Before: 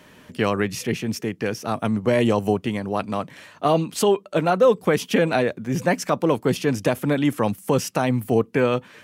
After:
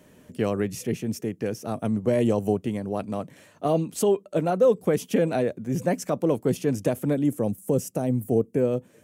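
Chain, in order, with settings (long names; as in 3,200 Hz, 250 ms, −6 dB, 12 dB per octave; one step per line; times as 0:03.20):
flat-topped bell 2,100 Hz −8.5 dB 2.9 octaves, from 0:07.14 −16 dB
level −2.5 dB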